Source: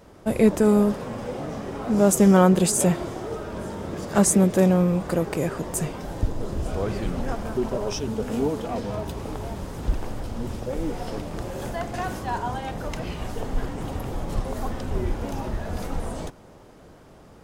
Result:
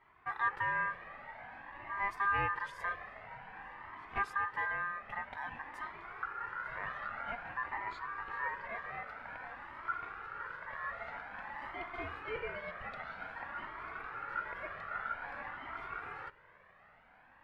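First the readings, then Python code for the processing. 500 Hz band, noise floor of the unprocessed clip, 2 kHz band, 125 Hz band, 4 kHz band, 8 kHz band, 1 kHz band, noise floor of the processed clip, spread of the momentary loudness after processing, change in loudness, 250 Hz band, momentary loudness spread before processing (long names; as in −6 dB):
−24.5 dB, −49 dBFS, +1.5 dB, −28.5 dB, −17.0 dB, below −40 dB, −6.0 dB, −63 dBFS, 13 LU, −14.5 dB, −34.5 dB, 15 LU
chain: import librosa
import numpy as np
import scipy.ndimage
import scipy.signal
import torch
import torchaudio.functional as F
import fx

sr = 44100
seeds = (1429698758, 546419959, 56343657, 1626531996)

y = fx.rider(x, sr, range_db=4, speed_s=2.0)
y = fx.low_shelf(y, sr, hz=180.0, db=-6.0)
y = y * np.sin(2.0 * np.pi * 1400.0 * np.arange(len(y)) / sr)
y = fx.air_absorb(y, sr, metres=420.0)
y = fx.comb_cascade(y, sr, direction='rising', hz=0.51)
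y = F.gain(torch.from_numpy(y), -5.5).numpy()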